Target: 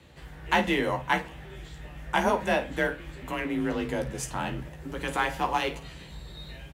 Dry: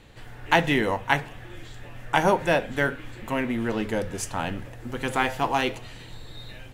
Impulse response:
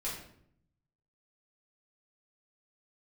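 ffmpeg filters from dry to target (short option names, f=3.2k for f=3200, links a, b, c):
-filter_complex "[0:a]afreqshift=36,asplit=2[a][b];[b]asoftclip=type=tanh:threshold=-17dB,volume=-8dB[c];[a][c]amix=inputs=2:normalize=0,aecho=1:1:15|52:0.473|0.224,volume=-6.5dB"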